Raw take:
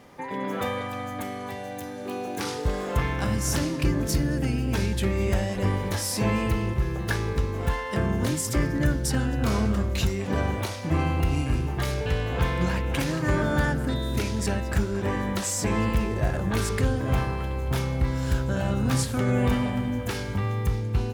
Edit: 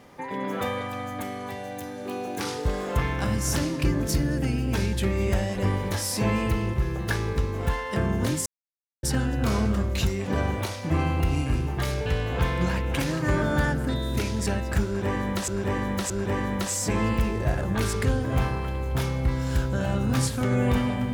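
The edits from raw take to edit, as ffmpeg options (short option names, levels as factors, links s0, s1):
-filter_complex "[0:a]asplit=5[s0][s1][s2][s3][s4];[s0]atrim=end=8.46,asetpts=PTS-STARTPTS,afade=t=out:st=8.456:d=0.004:c=hsin[s5];[s1]atrim=start=8.46:end=9.03,asetpts=PTS-STARTPTS,volume=0[s6];[s2]atrim=start=9.03:end=15.482,asetpts=PTS-STARTPTS,afade=t=in:d=0.004:c=hsin[s7];[s3]atrim=start=14.858:end=15.482[s8];[s4]atrim=start=14.858[s9];[s5][s6][s7]concat=n=3:v=0:a=1[s10];[s10][s8]acrossfade=d=0.004:c1=hsin:c2=hsin[s11];[s11][s9]acrossfade=d=0.004:c1=hsin:c2=hsin"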